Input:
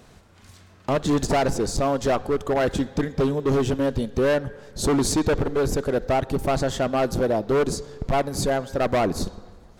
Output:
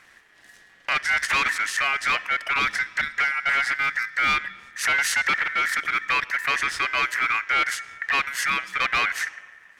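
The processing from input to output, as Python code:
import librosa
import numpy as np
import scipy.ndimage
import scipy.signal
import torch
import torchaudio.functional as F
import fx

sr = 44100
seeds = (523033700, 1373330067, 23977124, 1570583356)

y = x * np.sin(2.0 * np.pi * 1800.0 * np.arange(len(x)) / sr)
y = fx.dynamic_eq(y, sr, hz=4500.0, q=0.88, threshold_db=-43.0, ratio=4.0, max_db=5)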